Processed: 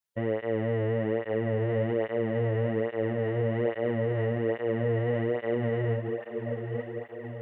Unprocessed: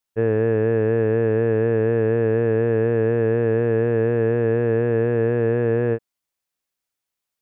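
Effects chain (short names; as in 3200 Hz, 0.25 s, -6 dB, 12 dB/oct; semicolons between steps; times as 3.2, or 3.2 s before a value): diffused feedback echo 0.929 s, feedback 60%, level -10.5 dB; limiter -14.5 dBFS, peak gain reduction 7 dB; formant shift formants +2 st; tape flanging out of phase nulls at 1.2 Hz, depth 4.2 ms; gain -2 dB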